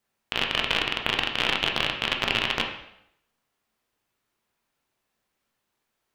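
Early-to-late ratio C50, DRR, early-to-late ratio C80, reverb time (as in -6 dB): 6.5 dB, 1.5 dB, 9.0 dB, 0.75 s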